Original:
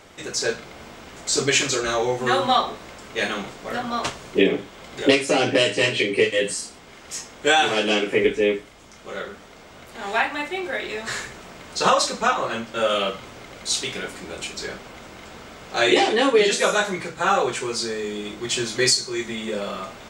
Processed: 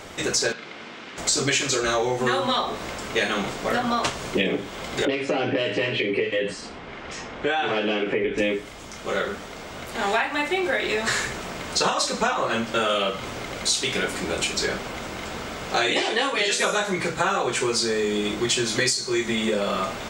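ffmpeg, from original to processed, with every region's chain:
-filter_complex "[0:a]asettb=1/sr,asplit=3[s0][s1][s2];[s0]atrim=end=0.524[s3];[s1]atrim=start=0.52:end=1.18,asetpts=PTS-STARTPTS,afade=t=in:d=0.004:c=qsin,afade=t=out:st=0.656:d=0.004:c=qsin,equalizer=f=660:t=o:w=2:g=-9,aeval=exprs='(mod(22.4*val(0)+1,2)-1)/22.4':c=same,highpass=280,lowpass=3600[s4];[s2]atrim=start=1.176[s5];[s3][s4]acrossfade=d=0.004:c1=hsin:c2=qsin[s6];[s6][s5]acrossfade=d=0.004:c1=qsin:c2=hsin,asettb=1/sr,asplit=3[s7][s8][s9];[s7]atrim=end=5.054[s10];[s8]atrim=start=5.05:end=8.38,asetpts=PTS-STARTPTS,afade=t=in:d=0.004:c=qsin,afade=t=out:st=3.326:d=0.004:c=qsin,acompressor=threshold=0.0316:ratio=2:attack=3.2:release=140:knee=1:detection=peak,lowpass=2900[s11];[s9]atrim=start=8.376[s12];[s10][s11]acrossfade=d=0.004:c1=hsin:c2=qsin[s13];[s13][s12]acrossfade=d=0.004:c1=qsin:c2=hsin,asettb=1/sr,asplit=3[s14][s15][s16];[s14]atrim=end=16.024[s17];[s15]atrim=start=16.02:end=16.59,asetpts=PTS-STARTPTS,afade=t=in:d=0.004:c=qsin,afade=t=out:st=0.566:d=0.004:c=qsin,equalizer=f=210:w=0.71:g=-9.5,asplit=2[s18][s19];[s19]adelay=23,volume=0.251[s20];[s18][s20]amix=inputs=2:normalize=0,atrim=end_sample=25137[s21];[s16]atrim=start=16.586[s22];[s17][s21]acrossfade=d=0.004:c1=hsin:c2=qsin[s23];[s23][s22]acrossfade=d=0.004:c1=qsin:c2=hsin,afftfilt=real='re*lt(hypot(re,im),0.891)':imag='im*lt(hypot(re,im),0.891)':win_size=1024:overlap=0.75,acompressor=threshold=0.0398:ratio=6,volume=2.51"

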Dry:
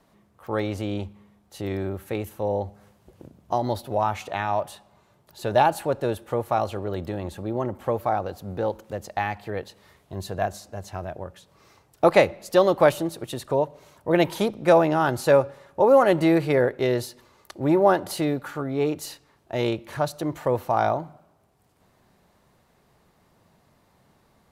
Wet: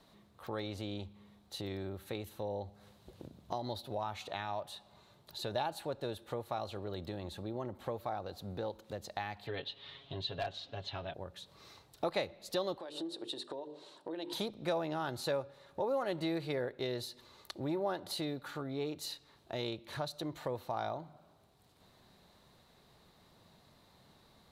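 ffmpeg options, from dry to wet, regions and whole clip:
-filter_complex "[0:a]asettb=1/sr,asplit=3[s0][s1][s2];[s0]atrim=end=9.474[s3];[s1]atrim=start=9.47:end=11.14,asetpts=PTS-STARTPTS,afade=t=in:d=0.004:c=qsin,afade=t=out:st=1.666:d=0.004:c=qsin,lowpass=f=3200:t=q:w=4.2,aecho=1:1:7.3:0.71,atrim=end_sample=73647,aeval=exprs='clip(val(0),-1,0.15)':c=same[s4];[s2]atrim=start=11.136[s5];[s3][s4]acrossfade=d=0.004:c1=hsin:c2=qsin[s6];[s6][s5]acrossfade=d=0.004:c1=qsin:c2=hsin,asettb=1/sr,asplit=3[s7][s8][s9];[s7]atrim=end=12.784[s10];[s8]atrim=start=12.78:end=14.33,asetpts=PTS-STARTPTS,afade=t=in:d=0.004:c=qsin,afade=t=out:st=1.546:d=0.004:c=qsin,bandreject=f=50:t=h:w=6,bandreject=f=100:t=h:w=6,bandreject=f=150:t=h:w=6,bandreject=f=200:t=h:w=6,bandreject=f=250:t=h:w=6,bandreject=f=300:t=h:w=6,bandreject=f=350:t=h:w=6,bandreject=f=400:t=h:w=6,bandreject=f=450:t=h:w=6,bandreject=f=500:t=h:w=6,acompressor=threshold=0.0398:ratio=8:attack=3.2:release=140:knee=1:detection=peak,highpass=320,equalizer=f=320:t=q:w=4:g=9,equalizer=f=650:t=q:w=4:g=-3,equalizer=f=1300:t=q:w=4:g=-5,equalizer=f=2200:t=q:w=4:g=-9,equalizer=f=6300:t=q:w=4:g=-8,lowpass=f=8900:w=0.5412,lowpass=f=8900:w=1.3066[s11];[s9]atrim=start=14.326[s12];[s10][s11]acrossfade=d=0.004:c1=hsin:c2=qsin[s13];[s13][s12]acrossfade=d=0.004:c1=qsin:c2=hsin,equalizer=f=3900:w=2.8:g=12,acompressor=threshold=0.00891:ratio=2,volume=0.708"

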